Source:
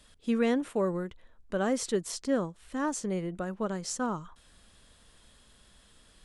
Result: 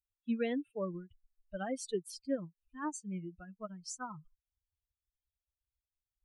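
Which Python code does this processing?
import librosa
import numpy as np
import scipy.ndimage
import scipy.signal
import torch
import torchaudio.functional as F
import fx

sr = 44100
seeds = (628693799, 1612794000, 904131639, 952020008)

y = fx.bin_expand(x, sr, power=3.0)
y = y * librosa.db_to_amplitude(-3.0)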